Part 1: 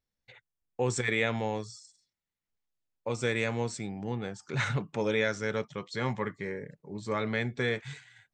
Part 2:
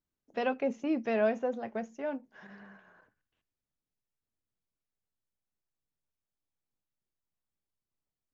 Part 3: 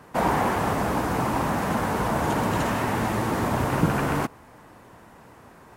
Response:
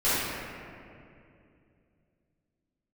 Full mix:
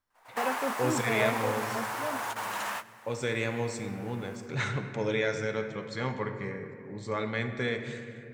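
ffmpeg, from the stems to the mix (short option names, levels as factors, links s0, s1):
-filter_complex "[0:a]volume=0.794,asplit=2[s0][s1];[s1]volume=0.0891[s2];[1:a]volume=0.75,asplit=2[s3][s4];[2:a]highpass=1000,acrusher=bits=4:mode=log:mix=0:aa=0.000001,volume=0.668,asplit=2[s5][s6];[s6]volume=0.0944[s7];[s4]apad=whole_len=254247[s8];[s5][s8]sidechaingate=range=0.0282:threshold=0.00141:ratio=16:detection=peak[s9];[3:a]atrim=start_sample=2205[s10];[s2][s10]afir=irnorm=-1:irlink=0[s11];[s7]aecho=0:1:103|206|309|412|515|618|721:1|0.51|0.26|0.133|0.0677|0.0345|0.0176[s12];[s0][s3][s9][s11][s12]amix=inputs=5:normalize=0"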